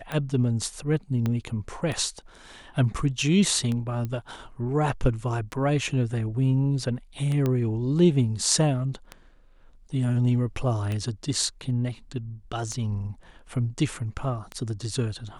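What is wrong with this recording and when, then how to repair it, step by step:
scratch tick 33 1/3 rpm −18 dBFS
0:01.26: click −15 dBFS
0:04.05: click −20 dBFS
0:07.46: click −14 dBFS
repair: click removal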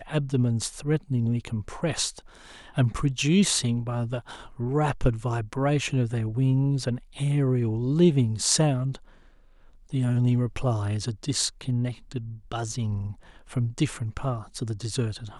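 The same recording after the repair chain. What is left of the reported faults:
0:01.26: click
0:07.46: click

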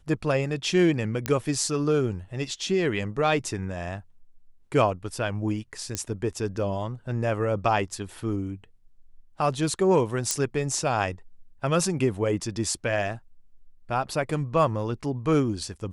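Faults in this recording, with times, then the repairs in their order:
0:01.26: click −10 dBFS
0:05.95: click −12 dBFS
0:10.31: click −9 dBFS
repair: click removal

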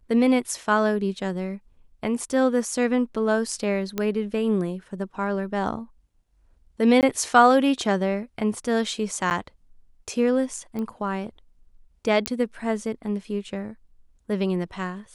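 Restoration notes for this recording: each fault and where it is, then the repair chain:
0:03.98: click −12 dBFS
0:07.01–0:07.03: drop-out 18 ms
0:09.30–0:09.31: drop-out 9.6 ms
0:10.79: click −21 dBFS
0:12.26: click −5 dBFS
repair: click removal
repair the gap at 0:07.01, 18 ms
repair the gap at 0:09.30, 9.6 ms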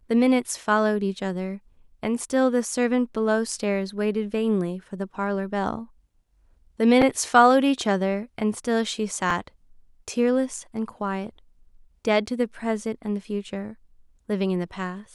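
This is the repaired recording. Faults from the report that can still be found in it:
0:10.79: click

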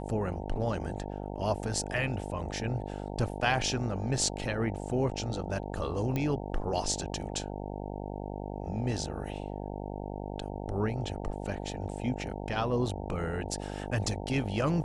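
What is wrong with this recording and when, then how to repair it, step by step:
mains buzz 50 Hz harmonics 18 −38 dBFS
0:06.16: click −18 dBFS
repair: click removal
hum removal 50 Hz, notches 18

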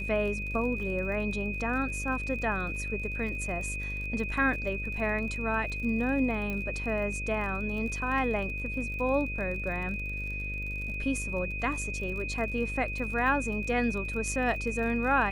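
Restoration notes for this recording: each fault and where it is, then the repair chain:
mains buzz 50 Hz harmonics 12 −37 dBFS
surface crackle 41 per second −38 dBFS
whistle 2,500 Hz −35 dBFS
0:06.50: click −22 dBFS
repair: click removal
hum removal 50 Hz, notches 12
notch filter 2,500 Hz, Q 30

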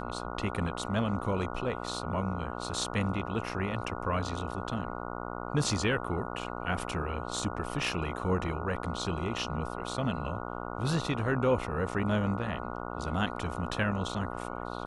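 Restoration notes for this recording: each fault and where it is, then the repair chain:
mains buzz 60 Hz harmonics 24 −38 dBFS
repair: hum removal 60 Hz, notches 24

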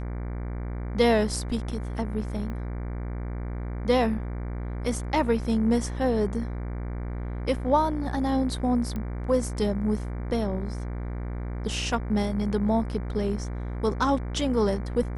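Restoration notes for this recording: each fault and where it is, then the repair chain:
mains buzz 60 Hz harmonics 39 −32 dBFS
0:02.50: click −25 dBFS
0:08.96: click −21 dBFS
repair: click removal
hum removal 60 Hz, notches 39

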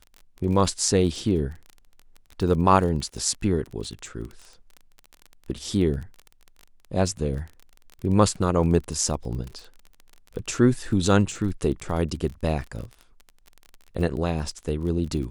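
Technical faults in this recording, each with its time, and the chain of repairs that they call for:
surface crackle 28 per second −32 dBFS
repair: click removal

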